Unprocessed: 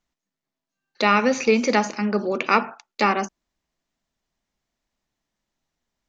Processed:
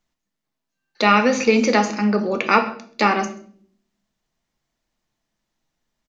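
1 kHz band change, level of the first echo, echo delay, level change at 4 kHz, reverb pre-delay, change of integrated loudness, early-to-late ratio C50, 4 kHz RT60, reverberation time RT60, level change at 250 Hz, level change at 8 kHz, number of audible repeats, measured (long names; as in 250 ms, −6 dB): +3.0 dB, −22.5 dB, 132 ms, +3.0 dB, 5 ms, +2.5 dB, 13.0 dB, 0.45 s, 0.55 s, +4.0 dB, can't be measured, 1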